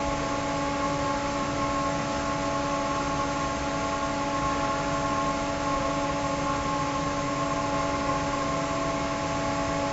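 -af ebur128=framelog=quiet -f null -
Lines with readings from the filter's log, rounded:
Integrated loudness:
  I:         -27.6 LUFS
  Threshold: -37.6 LUFS
Loudness range:
  LRA:         0.4 LU
  Threshold: -47.6 LUFS
  LRA low:   -27.7 LUFS
  LRA high:  -27.4 LUFS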